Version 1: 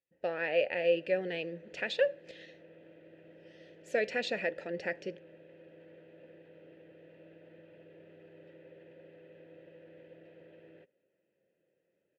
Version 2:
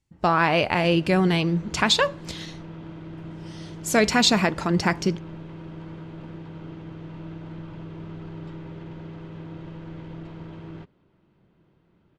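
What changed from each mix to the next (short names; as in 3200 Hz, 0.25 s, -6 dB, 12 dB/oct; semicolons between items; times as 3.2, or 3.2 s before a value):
master: remove vowel filter e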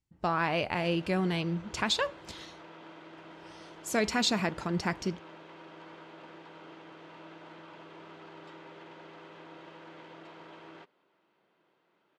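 speech -9.0 dB; background: add HPF 570 Hz 12 dB/oct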